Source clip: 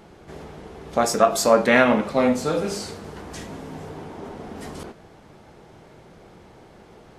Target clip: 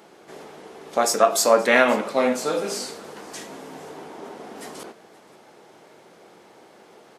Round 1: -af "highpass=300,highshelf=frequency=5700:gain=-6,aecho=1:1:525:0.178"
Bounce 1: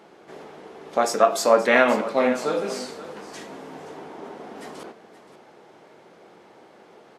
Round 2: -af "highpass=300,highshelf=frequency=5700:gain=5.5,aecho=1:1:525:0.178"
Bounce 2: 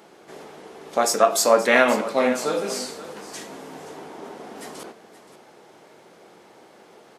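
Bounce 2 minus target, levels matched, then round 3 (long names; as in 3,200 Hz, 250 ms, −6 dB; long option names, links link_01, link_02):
echo-to-direct +7 dB
-af "highpass=300,highshelf=frequency=5700:gain=5.5,aecho=1:1:525:0.0794"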